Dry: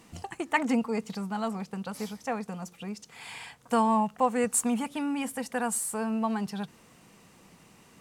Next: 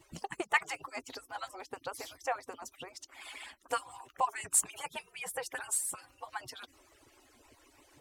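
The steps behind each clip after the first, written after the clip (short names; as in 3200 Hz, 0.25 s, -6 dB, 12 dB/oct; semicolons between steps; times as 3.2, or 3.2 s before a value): median-filter separation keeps percussive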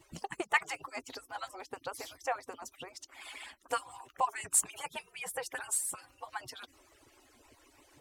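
nothing audible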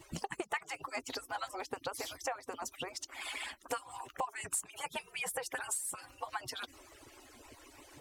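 compressor 5:1, threshold -41 dBFS, peak gain reduction 17 dB; gain +6 dB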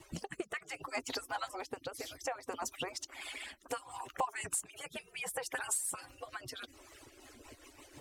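rotary speaker horn 0.65 Hz, later 6.3 Hz, at 6.68; gain +2.5 dB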